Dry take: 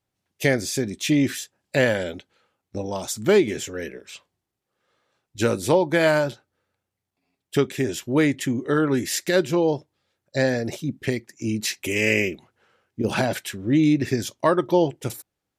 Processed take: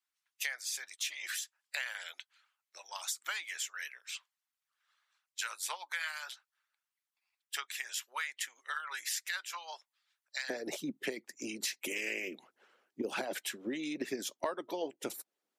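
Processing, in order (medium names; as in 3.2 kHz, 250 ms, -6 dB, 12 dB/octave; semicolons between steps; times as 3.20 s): high-pass 1.1 kHz 24 dB/octave, from 10.50 s 240 Hz; harmonic-percussive split harmonic -16 dB; compression 4:1, threshold -35 dBFS, peak gain reduction 16 dB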